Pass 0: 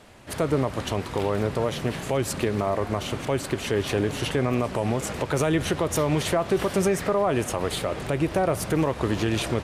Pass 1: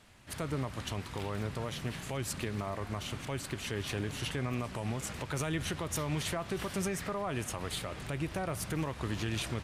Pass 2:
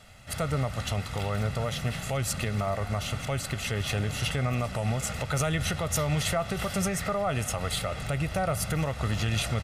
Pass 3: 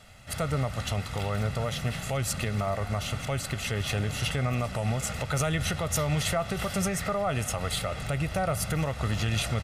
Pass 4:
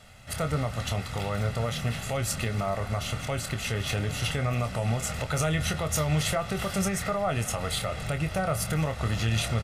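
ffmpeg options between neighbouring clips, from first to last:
-af "equalizer=f=490:w=0.68:g=-9,volume=-6.5dB"
-af "aecho=1:1:1.5:0.65,volume=5.5dB"
-af anull
-filter_complex "[0:a]asplit=2[a][b];[b]adelay=26,volume=-9dB[c];[a][c]amix=inputs=2:normalize=0"

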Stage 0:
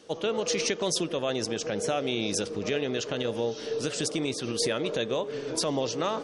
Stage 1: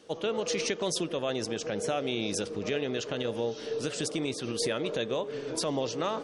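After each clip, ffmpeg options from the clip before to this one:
-af "equalizer=f=5.7k:w=1.5:g=-2.5,volume=-2dB"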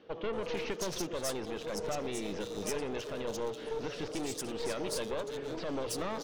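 -filter_complex "[0:a]aeval=exprs='clip(val(0),-1,0.0141)':c=same,acrossover=split=3800[a][b];[b]adelay=330[c];[a][c]amix=inputs=2:normalize=0,volume=-1.5dB"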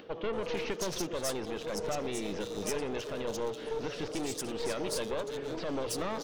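-af "acompressor=mode=upward:threshold=-47dB:ratio=2.5,volume=1.5dB"

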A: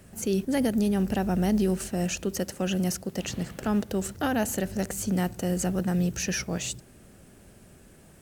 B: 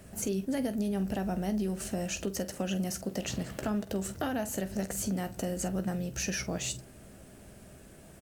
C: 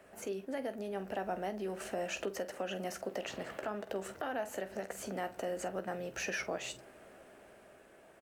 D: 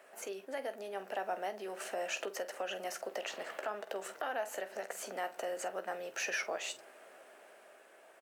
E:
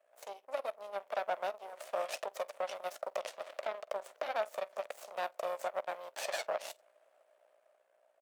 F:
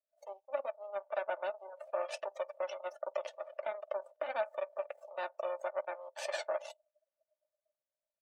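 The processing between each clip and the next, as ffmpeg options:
-filter_complex "[0:a]equalizer=f=640:t=o:w=0.22:g=6,acompressor=threshold=-30dB:ratio=6,asplit=2[a][b];[b]aecho=0:1:15|47:0.299|0.2[c];[a][c]amix=inputs=2:normalize=0"
-filter_complex "[0:a]acrossover=split=360 2800:gain=0.0891 1 0.2[a][b][c];[a][b][c]amix=inputs=3:normalize=0,dynaudnorm=f=290:g=9:m=4dB,alimiter=level_in=2.5dB:limit=-24dB:level=0:latency=1:release=258,volume=-2.5dB"
-af "highpass=520,volume=2dB"
-af "aeval=exprs='val(0)+0.000891*(sin(2*PI*60*n/s)+sin(2*PI*2*60*n/s)/2+sin(2*PI*3*60*n/s)/3+sin(2*PI*4*60*n/s)/4+sin(2*PI*5*60*n/s)/5)':c=same,aeval=exprs='0.0631*(cos(1*acos(clip(val(0)/0.0631,-1,1)))-cos(1*PI/2))+0.00501*(cos(3*acos(clip(val(0)/0.0631,-1,1)))-cos(3*PI/2))+0.0251*(cos(4*acos(clip(val(0)/0.0631,-1,1)))-cos(4*PI/2))+0.00562*(cos(7*acos(clip(val(0)/0.0631,-1,1)))-cos(7*PI/2))':c=same,highpass=f=590:t=q:w=4.9,volume=-5dB"
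-af "afftdn=nr=28:nf=-48,aecho=1:1:3.4:0.58,volume=-2dB"

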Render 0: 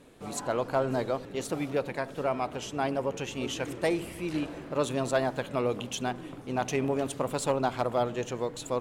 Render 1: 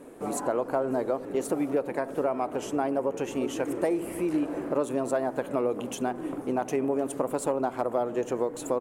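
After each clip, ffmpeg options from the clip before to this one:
-af "acompressor=threshold=-34dB:ratio=4,firequalizer=gain_entry='entry(110,0);entry(290,13);entry(3600,-4);entry(9100,9)':delay=0.05:min_phase=1,volume=-2dB"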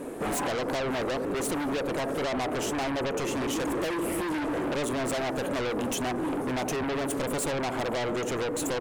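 -af "asoftclip=type=tanh:threshold=-24.5dB,aeval=exprs='0.0596*(cos(1*acos(clip(val(0)/0.0596,-1,1)))-cos(1*PI/2))+0.0266*(cos(5*acos(clip(val(0)/0.0596,-1,1)))-cos(5*PI/2))':c=same"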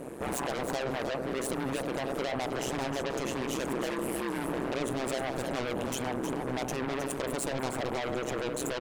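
-af "tremolo=f=130:d=0.947,aecho=1:1:315:0.398"

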